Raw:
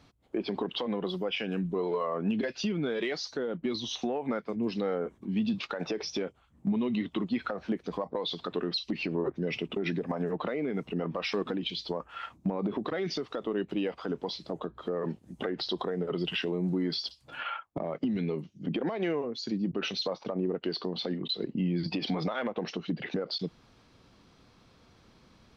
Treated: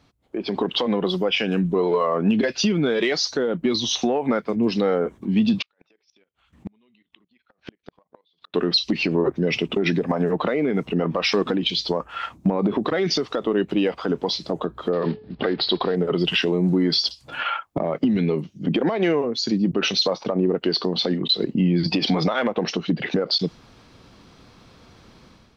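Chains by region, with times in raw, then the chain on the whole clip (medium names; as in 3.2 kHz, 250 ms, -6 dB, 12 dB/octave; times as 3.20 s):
5.62–8.54 s: level held to a coarse grid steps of 16 dB + peaking EQ 2.8 kHz +12 dB 2.3 oct + inverted gate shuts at -30 dBFS, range -40 dB
14.93–15.96 s: block-companded coder 5-bit + steep low-pass 4.7 kHz 72 dB/octave + de-hum 429.4 Hz, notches 31
whole clip: dynamic bell 5.9 kHz, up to +5 dB, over -50 dBFS, Q 1.2; level rider gain up to 10 dB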